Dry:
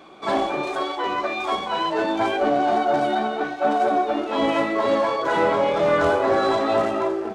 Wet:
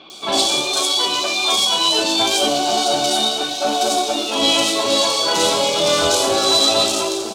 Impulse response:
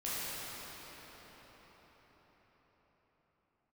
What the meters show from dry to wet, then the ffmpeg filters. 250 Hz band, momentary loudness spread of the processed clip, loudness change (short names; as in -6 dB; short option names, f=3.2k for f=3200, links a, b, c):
+0.5 dB, 4 LU, +6.0 dB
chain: -filter_complex "[0:a]aexciter=amount=7.9:drive=9.7:freq=2.9k,acrossover=split=2900[a][b];[b]adelay=100[c];[a][c]amix=inputs=2:normalize=0,asplit=2[d][e];[1:a]atrim=start_sample=2205[f];[e][f]afir=irnorm=-1:irlink=0,volume=-19.5dB[g];[d][g]amix=inputs=2:normalize=0"